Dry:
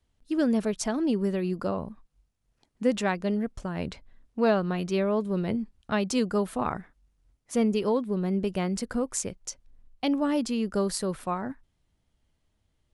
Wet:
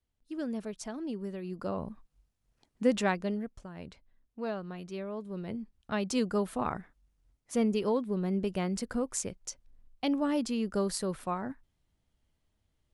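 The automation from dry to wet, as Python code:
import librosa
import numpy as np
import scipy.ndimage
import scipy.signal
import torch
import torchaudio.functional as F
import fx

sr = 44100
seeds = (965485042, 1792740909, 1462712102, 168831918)

y = fx.gain(x, sr, db=fx.line((1.43, -11.0), (1.88, -1.5), (3.1, -1.5), (3.68, -12.5), (5.15, -12.5), (6.18, -3.5)))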